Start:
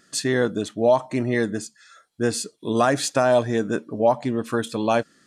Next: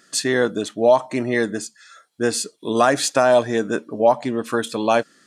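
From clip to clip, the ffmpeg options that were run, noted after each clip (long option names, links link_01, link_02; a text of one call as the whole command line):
ffmpeg -i in.wav -af "highpass=frequency=280:poles=1,volume=4dB" out.wav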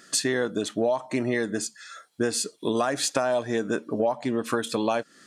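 ffmpeg -i in.wav -af "acompressor=threshold=-25dB:ratio=6,volume=3dB" out.wav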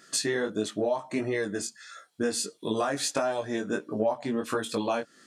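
ffmpeg -i in.wav -af "flanger=delay=18.5:depth=2.7:speed=1.5" out.wav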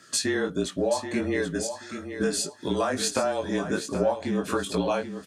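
ffmpeg -i in.wav -af "afreqshift=-31,aecho=1:1:780|1560|2340:0.335|0.0804|0.0193,volume=2dB" out.wav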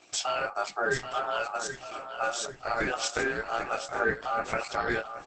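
ffmpeg -i in.wav -filter_complex "[0:a]aeval=exprs='val(0)*sin(2*PI*1000*n/s)':channel_layout=same,asplit=2[link_01][link_02];[link_02]adelay=1574,volume=-12dB,highshelf=frequency=4000:gain=-35.4[link_03];[link_01][link_03]amix=inputs=2:normalize=0" -ar 48000 -c:a libopus -b:a 12k out.opus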